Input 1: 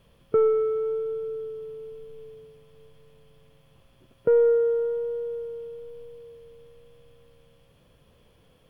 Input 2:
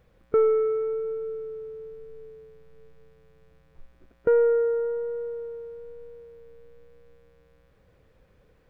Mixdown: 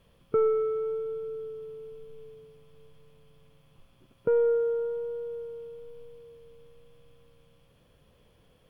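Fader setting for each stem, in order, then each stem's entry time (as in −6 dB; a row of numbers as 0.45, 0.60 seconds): −3.0, −13.0 decibels; 0.00, 0.00 seconds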